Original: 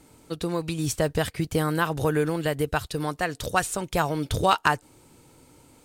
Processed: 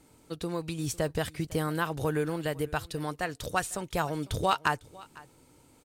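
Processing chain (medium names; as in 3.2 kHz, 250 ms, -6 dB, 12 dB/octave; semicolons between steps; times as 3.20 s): delay 502 ms -22 dB; trim -5.5 dB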